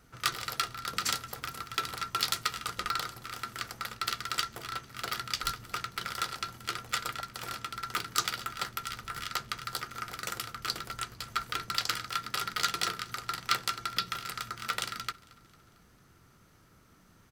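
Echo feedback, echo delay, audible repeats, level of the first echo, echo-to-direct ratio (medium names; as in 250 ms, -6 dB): 54%, 225 ms, 3, -23.5 dB, -22.0 dB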